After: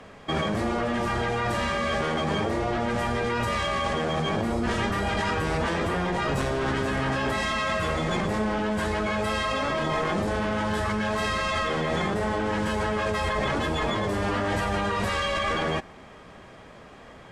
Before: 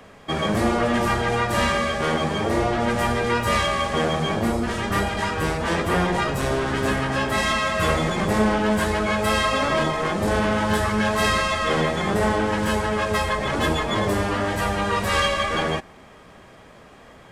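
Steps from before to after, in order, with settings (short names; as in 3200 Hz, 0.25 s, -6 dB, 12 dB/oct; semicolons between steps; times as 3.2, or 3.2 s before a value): high shelf 8700 Hz +4 dB; in parallel at +1 dB: negative-ratio compressor -25 dBFS, ratio -0.5; on the sum: air absorption 52 m; gain -8.5 dB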